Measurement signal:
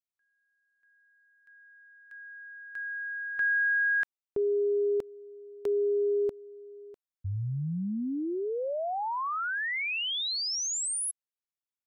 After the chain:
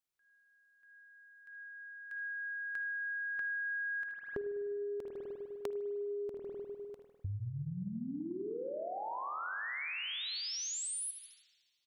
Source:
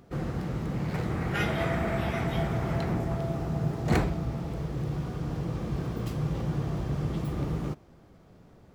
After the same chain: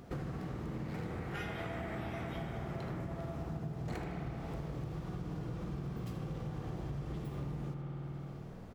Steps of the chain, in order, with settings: feedback echo 78 ms, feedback 36%, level -12.5 dB; spring tank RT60 1.8 s, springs 50 ms, chirp 30 ms, DRR 3 dB; compressor 8:1, threshold -40 dBFS; gain +2.5 dB

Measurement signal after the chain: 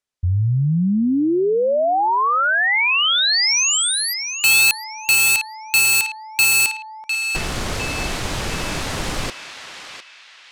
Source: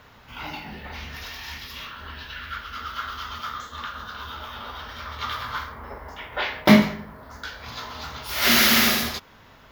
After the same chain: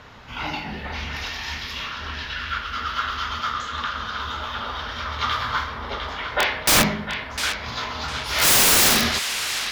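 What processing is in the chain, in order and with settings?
LPF 8200 Hz 12 dB/oct; wrapped overs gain 16.5 dB; narrowing echo 0.704 s, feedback 43%, band-pass 2700 Hz, level -6 dB; gain +6 dB

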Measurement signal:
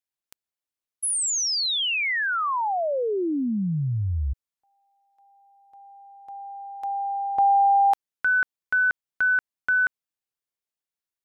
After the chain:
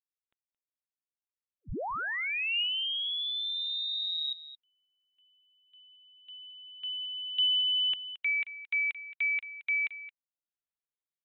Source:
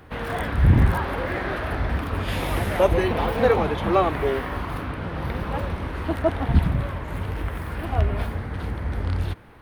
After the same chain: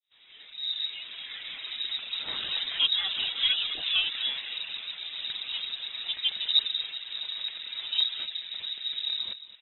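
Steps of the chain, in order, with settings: opening faded in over 2.39 s; reverb removal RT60 0.58 s; dynamic EQ 960 Hz, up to +4 dB, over -40 dBFS, Q 4.6; outdoor echo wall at 38 m, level -14 dB; inverted band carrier 3800 Hz; gain -7.5 dB

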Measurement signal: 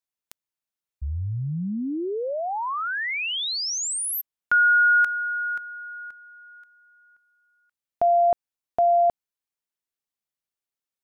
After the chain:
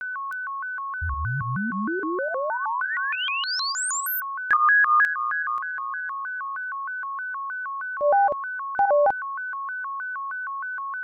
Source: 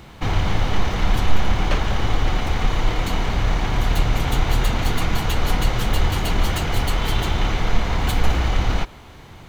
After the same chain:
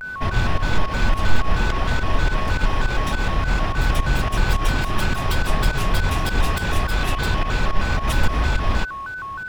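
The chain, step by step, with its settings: pump 105 bpm, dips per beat 2, -14 dB, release 99 ms; whine 1300 Hz -28 dBFS; shaped vibrato square 3.2 Hz, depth 250 cents

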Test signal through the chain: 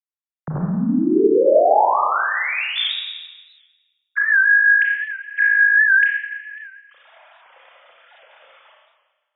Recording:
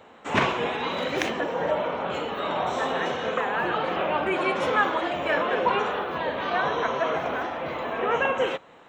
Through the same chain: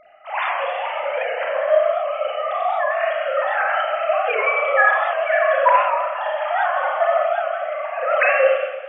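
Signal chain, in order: sine-wave speech; Schroeder reverb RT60 1.3 s, combs from 28 ms, DRR -3 dB; record warp 78 rpm, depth 100 cents; gain +1.5 dB

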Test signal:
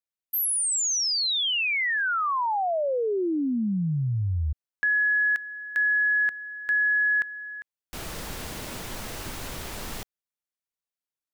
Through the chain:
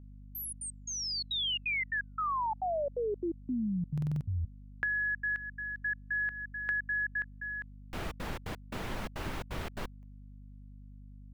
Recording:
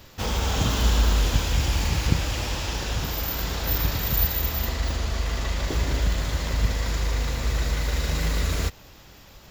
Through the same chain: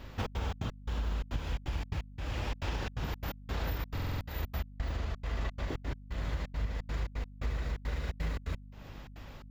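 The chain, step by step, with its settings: tone controls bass +1 dB, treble -14 dB; compressor 12:1, threshold -30 dBFS; step gate "xxx.xx.x..xxxx." 172 bpm -60 dB; hum 50 Hz, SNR 14 dB; stuck buffer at 3.93, samples 2048, times 5

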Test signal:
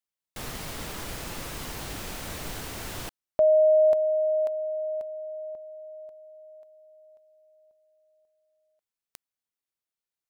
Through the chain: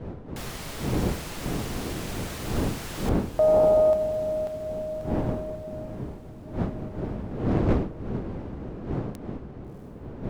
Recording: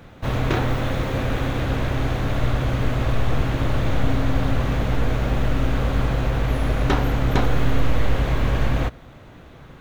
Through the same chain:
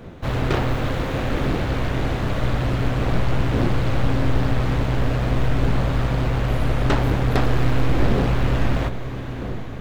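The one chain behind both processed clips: wind noise 290 Hz -31 dBFS; diffused feedback echo 0.673 s, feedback 62%, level -12 dB; Doppler distortion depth 0.75 ms

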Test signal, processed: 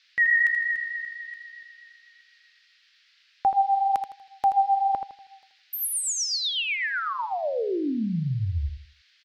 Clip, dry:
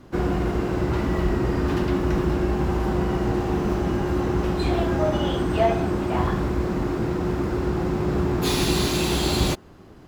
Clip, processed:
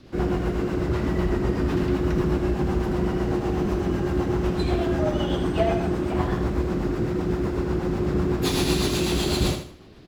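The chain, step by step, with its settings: rotary speaker horn 8 Hz; band noise 1600–4900 Hz -63 dBFS; feedback echo 80 ms, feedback 31%, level -8 dB

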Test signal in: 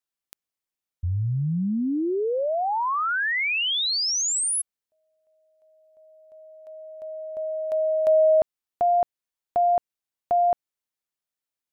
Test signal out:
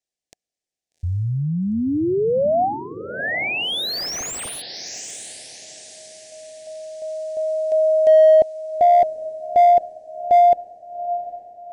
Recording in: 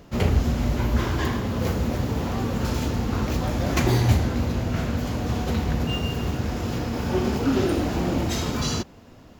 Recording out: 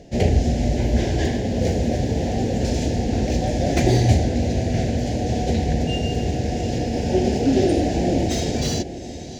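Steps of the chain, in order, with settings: EQ curve 190 Hz 0 dB, 740 Hz +5 dB, 1200 Hz -30 dB, 1700 Hz -2 dB, 3100 Hz -2 dB, 6000 Hz +3 dB, 8600 Hz 0 dB, 14000 Hz -19 dB; diffused feedback echo 0.8 s, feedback 43%, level -13.5 dB; slew limiter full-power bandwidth 180 Hz; gain +2.5 dB

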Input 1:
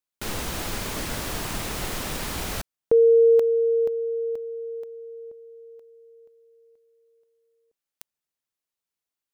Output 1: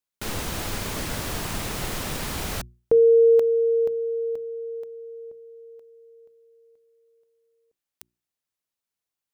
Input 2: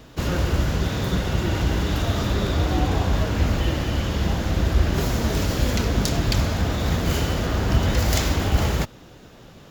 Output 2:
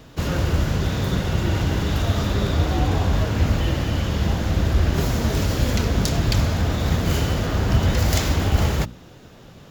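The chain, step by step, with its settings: bell 110 Hz +3.5 dB 1.8 oct; notches 60/120/180/240/300/360 Hz

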